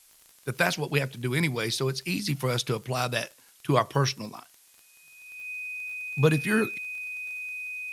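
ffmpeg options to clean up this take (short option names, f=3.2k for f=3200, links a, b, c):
-af "adeclick=t=4,bandreject=f=2.5k:w=30,afftdn=nr=15:nf=-58"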